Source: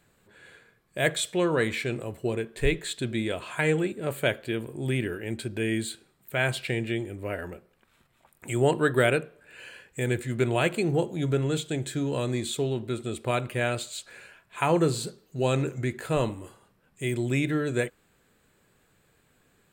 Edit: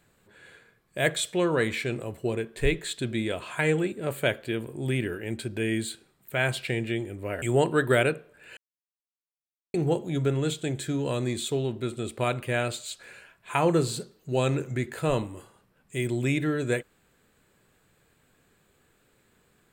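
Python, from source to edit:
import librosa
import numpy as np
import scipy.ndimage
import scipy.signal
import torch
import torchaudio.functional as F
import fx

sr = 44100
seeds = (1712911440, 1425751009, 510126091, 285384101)

y = fx.edit(x, sr, fx.cut(start_s=7.42, length_s=1.07),
    fx.silence(start_s=9.64, length_s=1.17), tone=tone)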